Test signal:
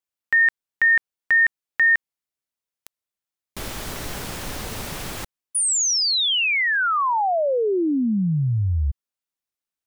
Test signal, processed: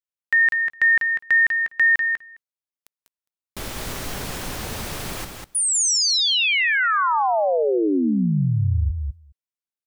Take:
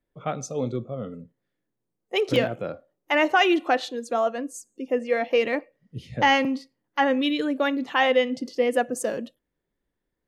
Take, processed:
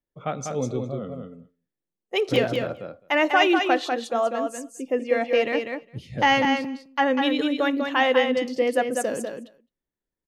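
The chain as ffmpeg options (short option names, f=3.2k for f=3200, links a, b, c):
-filter_complex "[0:a]asplit=2[a][b];[b]aecho=0:1:212:0.075[c];[a][c]amix=inputs=2:normalize=0,agate=range=-10dB:threshold=-50dB:ratio=3:release=151:detection=peak,asplit=2[d][e];[e]aecho=0:1:196:0.531[f];[d][f]amix=inputs=2:normalize=0"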